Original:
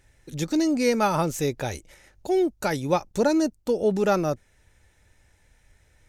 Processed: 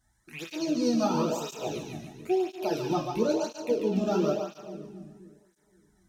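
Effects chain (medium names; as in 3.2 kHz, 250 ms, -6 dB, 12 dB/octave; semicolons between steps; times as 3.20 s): rattle on loud lows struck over -43 dBFS, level -23 dBFS; touch-sensitive phaser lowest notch 420 Hz, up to 2.1 kHz, full sweep at -24 dBFS; two-band feedback delay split 360 Hz, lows 260 ms, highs 143 ms, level -5 dB; two-slope reverb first 0.37 s, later 1.6 s, from -25 dB, DRR 0 dB; cancelling through-zero flanger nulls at 0.99 Hz, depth 2.3 ms; trim -4.5 dB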